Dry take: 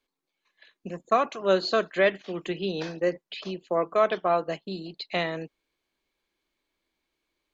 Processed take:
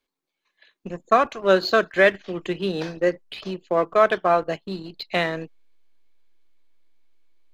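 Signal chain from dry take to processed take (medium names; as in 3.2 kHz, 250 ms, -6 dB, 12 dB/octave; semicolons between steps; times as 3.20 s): dynamic bell 1.6 kHz, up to +6 dB, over -43 dBFS, Q 3.4; in parallel at -3 dB: hysteresis with a dead band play -29 dBFS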